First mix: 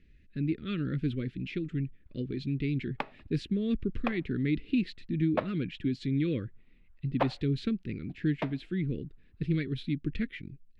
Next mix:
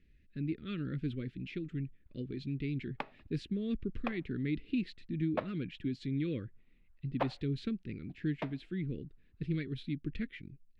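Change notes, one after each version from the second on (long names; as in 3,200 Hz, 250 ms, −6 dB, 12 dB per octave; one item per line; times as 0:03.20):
speech −5.5 dB
background −5.0 dB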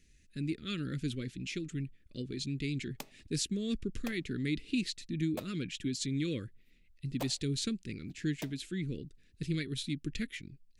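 background: add parametric band 1,400 Hz −14 dB 2.9 octaves
master: remove high-frequency loss of the air 420 metres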